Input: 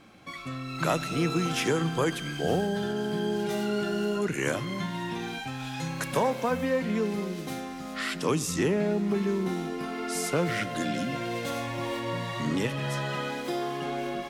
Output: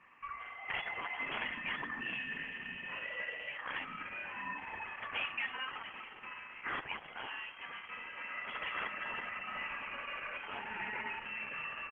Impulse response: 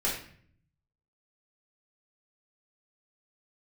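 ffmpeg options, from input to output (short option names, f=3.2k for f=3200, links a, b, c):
-filter_complex "[0:a]highpass=1.2k,aecho=1:1:1.3:0.49,acontrast=35,aeval=exprs='(mod(9.44*val(0)+1,2)-1)/9.44':c=same,afreqshift=16,asplit=2[a][b];[b]adelay=120,highpass=300,lowpass=3.4k,asoftclip=type=hard:threshold=-21.5dB,volume=-17dB[c];[a][c]amix=inputs=2:normalize=0,lowpass=f=2.9k:t=q:w=0.5098,lowpass=f=2.9k:t=q:w=0.6013,lowpass=f=2.9k:t=q:w=0.9,lowpass=f=2.9k:t=q:w=2.563,afreqshift=-3400,atempo=1.2,volume=-7dB" -ar 48000 -c:a libopus -b:a 10k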